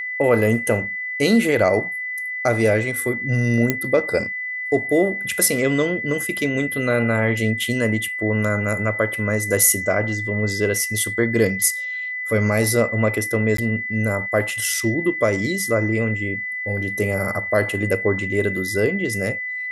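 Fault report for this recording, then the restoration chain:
whine 2 kHz -25 dBFS
3.70 s: pop -4 dBFS
13.57–13.58 s: dropout 13 ms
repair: de-click; band-stop 2 kHz, Q 30; interpolate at 13.57 s, 13 ms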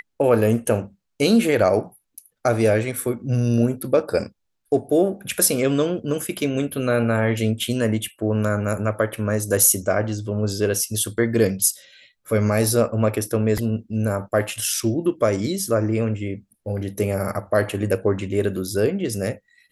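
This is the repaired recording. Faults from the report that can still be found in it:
nothing left

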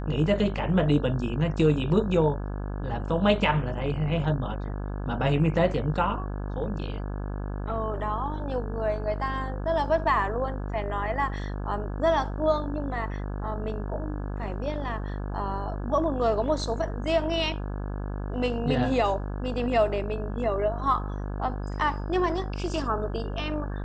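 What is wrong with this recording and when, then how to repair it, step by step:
buzz 50 Hz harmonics 34 -32 dBFS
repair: de-hum 50 Hz, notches 34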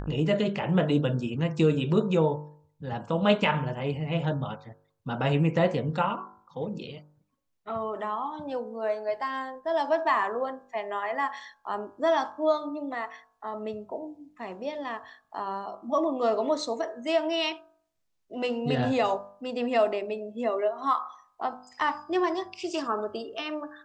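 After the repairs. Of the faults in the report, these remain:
nothing left

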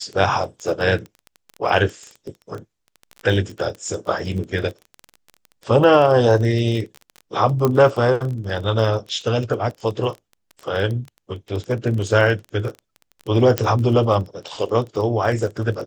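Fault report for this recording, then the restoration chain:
crackle 21 per s -26 dBFS
7.65 s: pop -6 dBFS
13.58 s: pop -3 dBFS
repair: de-click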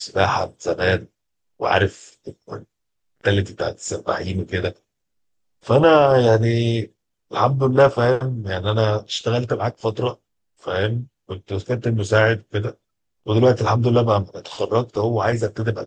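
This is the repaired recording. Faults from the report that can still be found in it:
nothing left

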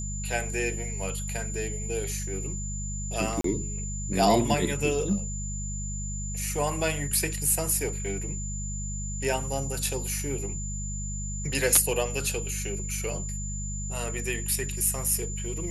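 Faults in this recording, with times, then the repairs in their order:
hum 50 Hz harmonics 4 -34 dBFS
whine 7.1 kHz -36 dBFS
3.41–3.44 s: dropout 33 ms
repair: band-stop 7.1 kHz, Q 30; de-hum 50 Hz, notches 4; interpolate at 3.41 s, 33 ms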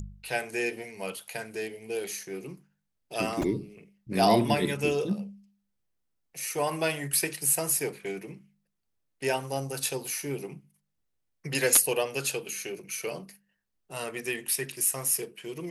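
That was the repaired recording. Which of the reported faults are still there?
nothing left

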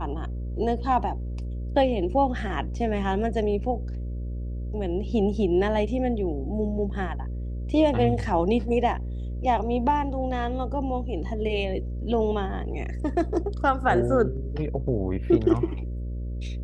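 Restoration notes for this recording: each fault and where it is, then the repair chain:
buzz 60 Hz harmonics 10 -31 dBFS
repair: de-hum 60 Hz, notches 10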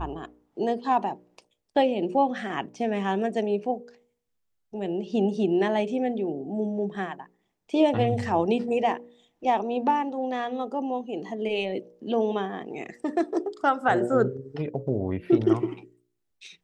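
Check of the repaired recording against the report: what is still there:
nothing left

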